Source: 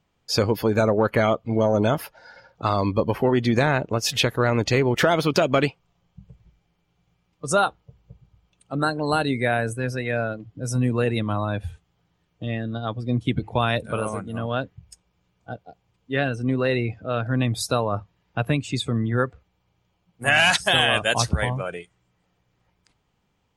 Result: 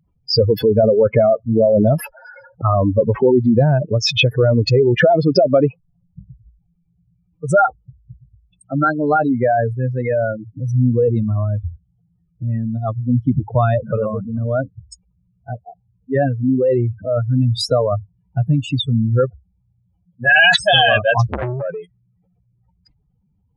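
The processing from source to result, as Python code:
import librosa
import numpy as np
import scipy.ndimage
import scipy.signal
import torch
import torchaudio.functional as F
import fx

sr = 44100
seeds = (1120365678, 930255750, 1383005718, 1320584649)

y = fx.spec_expand(x, sr, power=3.2)
y = fx.transformer_sat(y, sr, knee_hz=1000.0, at=(21.31, 21.78))
y = y * librosa.db_to_amplitude(7.5)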